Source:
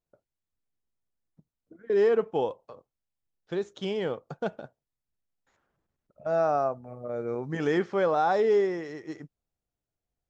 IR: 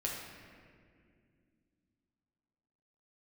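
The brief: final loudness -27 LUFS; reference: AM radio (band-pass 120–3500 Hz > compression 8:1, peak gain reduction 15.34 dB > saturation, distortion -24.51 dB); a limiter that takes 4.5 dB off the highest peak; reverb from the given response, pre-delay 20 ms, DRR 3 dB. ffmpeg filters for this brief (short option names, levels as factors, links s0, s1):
-filter_complex "[0:a]alimiter=limit=0.106:level=0:latency=1,asplit=2[s0][s1];[1:a]atrim=start_sample=2205,adelay=20[s2];[s1][s2]afir=irnorm=-1:irlink=0,volume=0.501[s3];[s0][s3]amix=inputs=2:normalize=0,highpass=120,lowpass=3500,acompressor=threshold=0.02:ratio=8,asoftclip=threshold=0.0473,volume=4.47"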